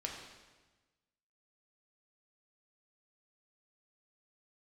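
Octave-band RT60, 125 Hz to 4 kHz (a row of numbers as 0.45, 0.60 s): 1.6, 1.4, 1.3, 1.2, 1.2, 1.1 s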